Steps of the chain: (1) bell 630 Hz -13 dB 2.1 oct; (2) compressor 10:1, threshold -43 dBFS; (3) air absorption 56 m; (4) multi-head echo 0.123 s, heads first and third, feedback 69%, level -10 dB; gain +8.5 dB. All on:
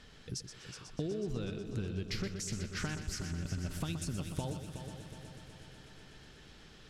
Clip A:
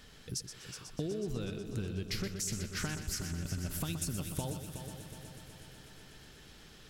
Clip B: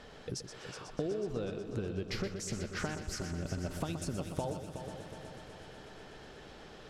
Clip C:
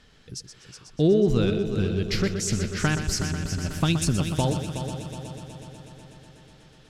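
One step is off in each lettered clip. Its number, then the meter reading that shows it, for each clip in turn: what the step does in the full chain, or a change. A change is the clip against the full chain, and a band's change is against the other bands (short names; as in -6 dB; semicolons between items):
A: 3, 8 kHz band +5.0 dB; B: 1, 1 kHz band +5.5 dB; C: 2, mean gain reduction 8.5 dB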